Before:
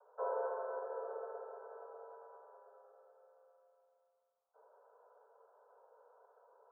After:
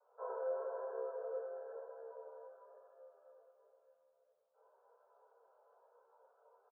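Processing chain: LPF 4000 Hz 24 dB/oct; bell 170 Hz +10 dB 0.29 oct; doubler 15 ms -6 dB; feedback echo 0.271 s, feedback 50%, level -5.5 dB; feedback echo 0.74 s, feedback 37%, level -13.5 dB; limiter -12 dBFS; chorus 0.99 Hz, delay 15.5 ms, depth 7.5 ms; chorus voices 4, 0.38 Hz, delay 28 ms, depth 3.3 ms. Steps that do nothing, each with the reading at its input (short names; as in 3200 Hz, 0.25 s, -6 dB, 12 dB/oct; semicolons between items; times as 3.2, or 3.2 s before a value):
LPF 4000 Hz: input band ends at 1500 Hz; bell 170 Hz: input band starts at 380 Hz; limiter -12 dBFS: input peak -25.5 dBFS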